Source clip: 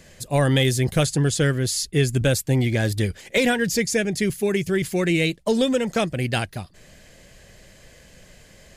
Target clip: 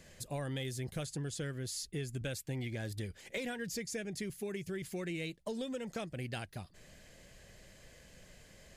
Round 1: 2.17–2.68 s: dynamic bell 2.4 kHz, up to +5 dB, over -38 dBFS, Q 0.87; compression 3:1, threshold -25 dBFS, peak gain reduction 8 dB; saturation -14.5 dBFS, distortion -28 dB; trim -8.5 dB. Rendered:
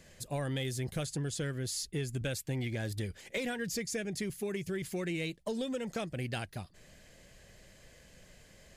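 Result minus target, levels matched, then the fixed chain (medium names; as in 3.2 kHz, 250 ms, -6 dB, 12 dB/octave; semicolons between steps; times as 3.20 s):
compression: peak gain reduction -4 dB
2.17–2.68 s: dynamic bell 2.4 kHz, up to +5 dB, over -38 dBFS, Q 0.87; compression 3:1, threshold -31 dBFS, peak gain reduction 12 dB; saturation -14.5 dBFS, distortion -35 dB; trim -8.5 dB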